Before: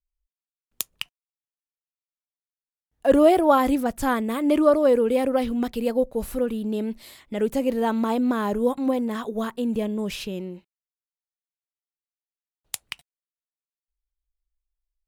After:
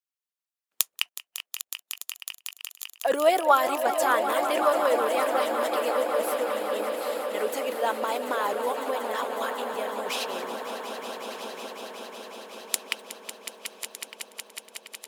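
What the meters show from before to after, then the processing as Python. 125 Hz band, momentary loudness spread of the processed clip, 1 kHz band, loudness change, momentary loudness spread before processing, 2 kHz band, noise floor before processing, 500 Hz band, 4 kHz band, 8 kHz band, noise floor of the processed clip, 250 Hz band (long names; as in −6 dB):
below −15 dB, 15 LU, +2.0 dB, −4.5 dB, 17 LU, +4.5 dB, below −85 dBFS, −3.0 dB, +5.0 dB, +6.0 dB, below −85 dBFS, −15.0 dB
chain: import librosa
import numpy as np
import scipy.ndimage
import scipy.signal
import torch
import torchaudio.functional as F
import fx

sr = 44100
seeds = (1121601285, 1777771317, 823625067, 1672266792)

y = fx.reverse_delay_fb(x, sr, ms=604, feedback_pct=73, wet_db=-12.5)
y = scipy.signal.sosfilt(scipy.signal.butter(2, 610.0, 'highpass', fs=sr, output='sos'), y)
y = fx.echo_swell(y, sr, ms=184, loudest=5, wet_db=-12)
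y = fx.hpss(y, sr, part='percussive', gain_db=9)
y = y * 10.0 ** (-4.5 / 20.0)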